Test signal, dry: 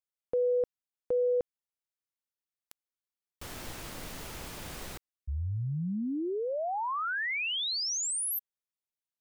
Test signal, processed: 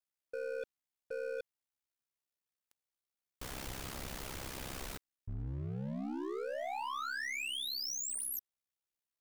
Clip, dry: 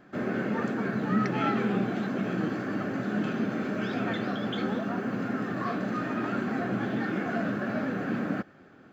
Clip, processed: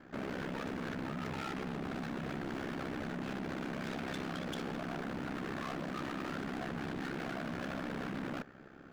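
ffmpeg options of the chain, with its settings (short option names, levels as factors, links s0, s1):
-af "areverse,acompressor=threshold=0.0141:ratio=12:attack=71:release=21:knee=1:detection=peak,areverse,asoftclip=type=hard:threshold=0.0141,aeval=exprs='val(0)*sin(2*PI*33*n/s)':c=same,aeval=exprs='0.0141*(cos(1*acos(clip(val(0)/0.0141,-1,1)))-cos(1*PI/2))+0.000447*(cos(8*acos(clip(val(0)/0.0141,-1,1)))-cos(8*PI/2))':c=same,volume=1.26"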